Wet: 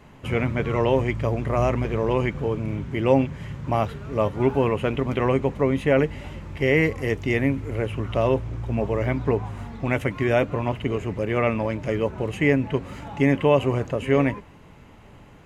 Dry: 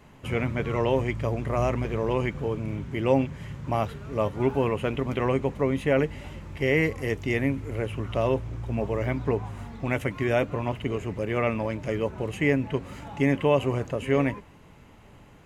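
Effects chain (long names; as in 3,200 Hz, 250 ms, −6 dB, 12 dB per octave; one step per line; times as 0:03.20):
high-shelf EQ 6,000 Hz −5 dB
level +3.5 dB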